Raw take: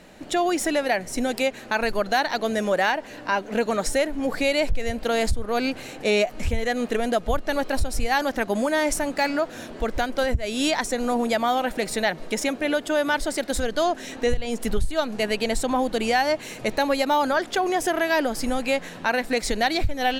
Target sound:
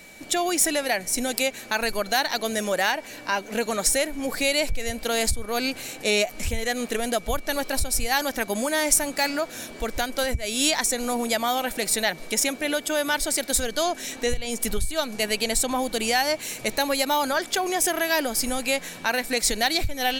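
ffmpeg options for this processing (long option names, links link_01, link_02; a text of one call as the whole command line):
ffmpeg -i in.wav -af "aeval=exprs='val(0)+0.00398*sin(2*PI*2300*n/s)':channel_layout=same,crystalizer=i=3.5:c=0,volume=-3.5dB" out.wav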